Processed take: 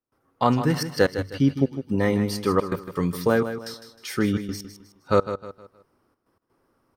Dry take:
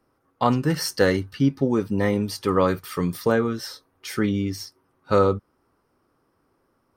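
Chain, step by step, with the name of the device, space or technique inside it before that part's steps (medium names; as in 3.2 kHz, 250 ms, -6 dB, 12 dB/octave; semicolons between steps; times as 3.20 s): trance gate with a delay (trance gate ".xxxxxx.x.xxxx." 127 bpm -24 dB; feedback delay 156 ms, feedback 35%, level -10.5 dB)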